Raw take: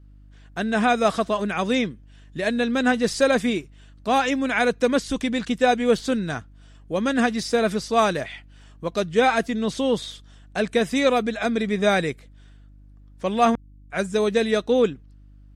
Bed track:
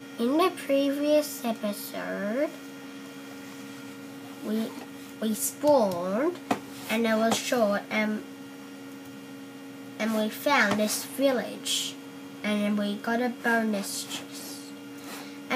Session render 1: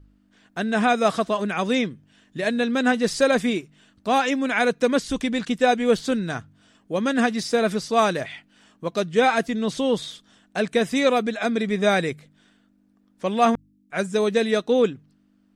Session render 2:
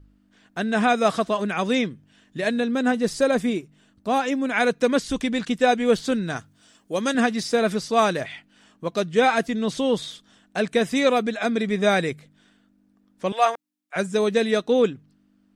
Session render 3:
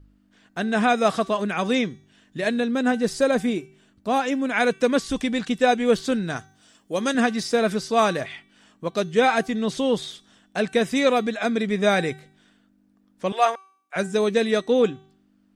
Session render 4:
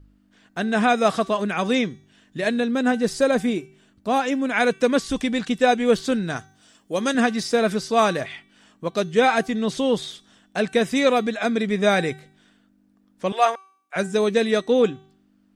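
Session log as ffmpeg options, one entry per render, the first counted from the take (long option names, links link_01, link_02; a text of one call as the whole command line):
ffmpeg -i in.wav -af "bandreject=frequency=50:width_type=h:width=4,bandreject=frequency=100:width_type=h:width=4,bandreject=frequency=150:width_type=h:width=4" out.wav
ffmpeg -i in.wav -filter_complex "[0:a]asettb=1/sr,asplit=3[link_01][link_02][link_03];[link_01]atrim=end=2.604[link_04];[link_02]atrim=start=2.6:end=4.54,asetpts=PTS-STARTPTS,afade=type=in:duration=0.004:curve=qsin,afade=type=out:start_time=1.936:duration=0.004:curve=qsin,equalizer=frequency=3000:width=0.37:gain=-5.5[link_05];[link_03]atrim=start=4.536[link_06];[link_04][link_05]acrossfade=duration=0.004:curve1=hsin:curve2=qsin[link_07];[link_07][link_06]acrossfade=duration=0.004:curve1=qsin:curve2=hsin,asettb=1/sr,asplit=3[link_08][link_09][link_10];[link_08]atrim=end=6.364[link_11];[link_09]atrim=start=6.36:end=7.15,asetpts=PTS-STARTPTS,afade=type=in:duration=0.004:curve=qsin,afade=type=out:start_time=0.786:duration=0.004:curve=qsin,bass=frequency=250:gain=-5,treble=frequency=4000:gain=9[link_12];[link_10]atrim=start=7.146[link_13];[link_11][link_12]acrossfade=duration=0.004:curve1=hsin:curve2=qsin[link_14];[link_14][link_13]acrossfade=duration=0.004:curve1=qsin:curve2=hsin,asettb=1/sr,asplit=3[link_15][link_16][link_17];[link_15]atrim=end=13.324[link_18];[link_16]atrim=start=13.32:end=13.96,asetpts=PTS-STARTPTS,afade=type=in:duration=0.004:curve=qsin,afade=type=out:start_time=0.636:duration=0.004:curve=qsin,highpass=frequency=510:width=0.5412,highpass=frequency=510:width=1.3066[link_19];[link_17]atrim=start=13.956[link_20];[link_18][link_19]acrossfade=duration=0.004:curve1=hsin:curve2=qsin[link_21];[link_21][link_20]acrossfade=duration=0.004:curve1=qsin:curve2=hsin" out.wav
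ffmpeg -i in.wav -af "bandreject=frequency=383.7:width_type=h:width=4,bandreject=frequency=767.4:width_type=h:width=4,bandreject=frequency=1151.1:width_type=h:width=4,bandreject=frequency=1534.8:width_type=h:width=4,bandreject=frequency=1918.5:width_type=h:width=4,bandreject=frequency=2302.2:width_type=h:width=4,bandreject=frequency=2685.9:width_type=h:width=4,bandreject=frequency=3069.6:width_type=h:width=4,bandreject=frequency=3453.3:width_type=h:width=4,bandreject=frequency=3837:width_type=h:width=4,bandreject=frequency=4220.7:width_type=h:width=4,bandreject=frequency=4604.4:width_type=h:width=4,bandreject=frequency=4988.1:width_type=h:width=4,bandreject=frequency=5371.8:width_type=h:width=4,bandreject=frequency=5755.5:width_type=h:width=4,bandreject=frequency=6139.2:width_type=h:width=4,bandreject=frequency=6522.9:width_type=h:width=4,bandreject=frequency=6906.6:width_type=h:width=4,bandreject=frequency=7290.3:width_type=h:width=4,bandreject=frequency=7674:width_type=h:width=4,bandreject=frequency=8057.7:width_type=h:width=4,bandreject=frequency=8441.4:width_type=h:width=4,bandreject=frequency=8825.1:width_type=h:width=4,bandreject=frequency=9208.8:width_type=h:width=4,bandreject=frequency=9592.5:width_type=h:width=4,bandreject=frequency=9976.2:width_type=h:width=4,bandreject=frequency=10359.9:width_type=h:width=4,bandreject=frequency=10743.6:width_type=h:width=4,bandreject=frequency=11127.3:width_type=h:width=4,bandreject=frequency=11511:width_type=h:width=4,bandreject=frequency=11894.7:width_type=h:width=4,bandreject=frequency=12278.4:width_type=h:width=4,bandreject=frequency=12662.1:width_type=h:width=4,bandreject=frequency=13045.8:width_type=h:width=4,bandreject=frequency=13429.5:width_type=h:width=4,bandreject=frequency=13813.2:width_type=h:width=4,bandreject=frequency=14196.9:width_type=h:width=4,bandreject=frequency=14580.6:width_type=h:width=4" out.wav
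ffmpeg -i in.wav -af "volume=1dB" out.wav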